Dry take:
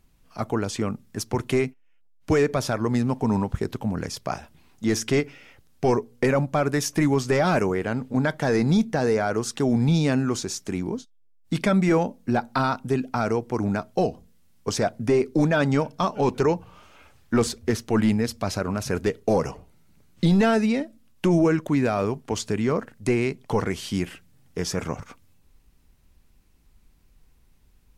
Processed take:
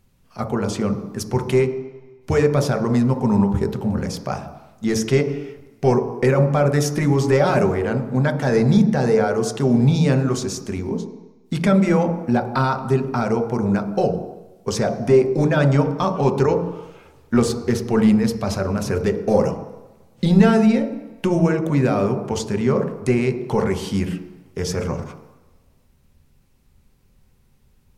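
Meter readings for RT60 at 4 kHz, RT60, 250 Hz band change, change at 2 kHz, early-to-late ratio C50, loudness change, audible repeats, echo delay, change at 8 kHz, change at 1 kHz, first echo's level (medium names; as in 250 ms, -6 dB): 1.3 s, 1.0 s, +4.5 dB, +1.5 dB, 9.0 dB, +4.5 dB, no echo, no echo, +1.0 dB, +3.0 dB, no echo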